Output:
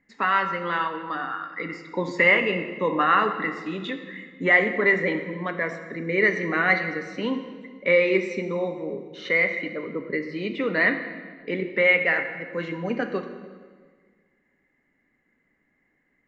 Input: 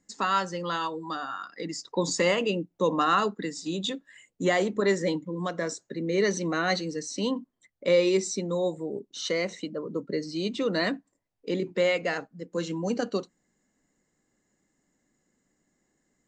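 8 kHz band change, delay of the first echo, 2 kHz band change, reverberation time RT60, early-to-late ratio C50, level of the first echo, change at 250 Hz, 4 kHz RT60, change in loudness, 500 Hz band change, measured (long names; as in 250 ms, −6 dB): below −15 dB, no echo audible, +11.5 dB, 1.6 s, 8.5 dB, no echo audible, +0.5 dB, 1.3 s, +4.5 dB, +1.5 dB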